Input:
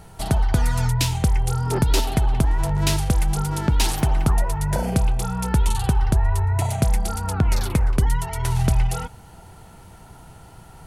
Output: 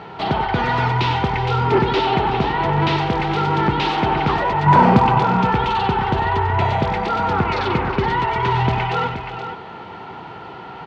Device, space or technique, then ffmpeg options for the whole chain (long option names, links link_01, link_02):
overdrive pedal into a guitar cabinet: -filter_complex "[0:a]asplit=2[link_01][link_02];[link_02]highpass=frequency=720:poles=1,volume=24dB,asoftclip=type=tanh:threshold=-7dB[link_03];[link_01][link_03]amix=inputs=2:normalize=0,lowpass=frequency=2000:poles=1,volume=-6dB,highpass=100,equalizer=frequency=380:width_type=q:width=4:gain=4,equalizer=frequency=640:width_type=q:width=4:gain=-6,equalizer=frequency=1600:width_type=q:width=4:gain=-4,lowpass=frequency=3800:width=0.5412,lowpass=frequency=3800:width=1.3066,asettb=1/sr,asplit=3[link_04][link_05][link_06];[link_04]atrim=end=4.664[link_07];[link_05]atrim=start=4.66:end=5.19,asetpts=PTS-STARTPTS,afade=type=in:duration=0.004:curve=qsin,afade=type=out:start_time=0.526:duration=0.004:curve=qsin,equalizer=frequency=125:width_type=o:width=1:gain=7,equalizer=frequency=250:width_type=o:width=1:gain=8,equalizer=frequency=500:width_type=o:width=1:gain=-5,equalizer=frequency=1000:width_type=o:width=1:gain=11,equalizer=frequency=8000:width_type=o:width=1:gain=8[link_08];[link_06]atrim=start=5.186[link_09];[link_07][link_08]acrossfade=duration=0.004:curve1=hsin:curve2=qsin[link_10];[link_10][link_09]acrossfade=duration=0.004:curve1=qsin:curve2=hsin,aecho=1:1:64|95|374|474:0.141|0.335|0.211|0.355"